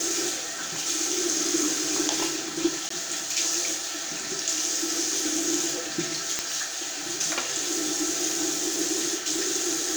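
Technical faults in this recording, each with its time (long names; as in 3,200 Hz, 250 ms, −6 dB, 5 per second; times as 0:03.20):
0:02.89–0:02.90: drop-out 14 ms
0:06.39: click −8 dBFS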